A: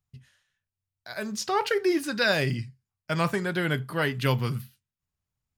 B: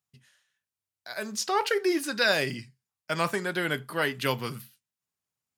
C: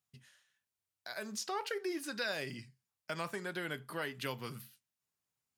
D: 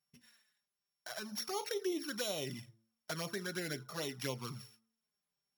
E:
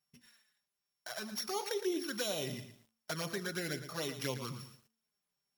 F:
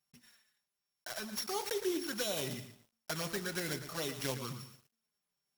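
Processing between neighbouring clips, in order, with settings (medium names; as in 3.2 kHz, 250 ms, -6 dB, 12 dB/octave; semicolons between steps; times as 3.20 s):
Bessel high-pass 270 Hz, order 2; peaking EQ 9.8 kHz +3.5 dB 1.5 oct
compression 2:1, threshold -43 dBFS, peak gain reduction 13 dB; trim -1 dB
sorted samples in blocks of 8 samples; de-hum 112.7 Hz, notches 13; touch-sensitive flanger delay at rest 5.1 ms, full sweep at -34 dBFS; trim +2.5 dB
bit-crushed delay 114 ms, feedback 35%, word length 10-bit, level -10.5 dB; trim +1.5 dB
block-companded coder 3-bit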